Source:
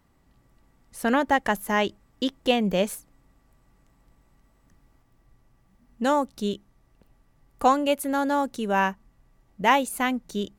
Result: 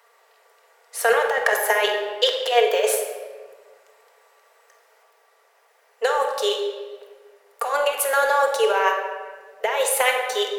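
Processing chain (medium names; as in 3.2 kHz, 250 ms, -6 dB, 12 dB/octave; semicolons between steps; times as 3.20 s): rippled Chebyshev high-pass 420 Hz, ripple 3 dB; compressor with a negative ratio -29 dBFS, ratio -1; simulated room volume 1600 m³, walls mixed, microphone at 1.7 m; trim +8.5 dB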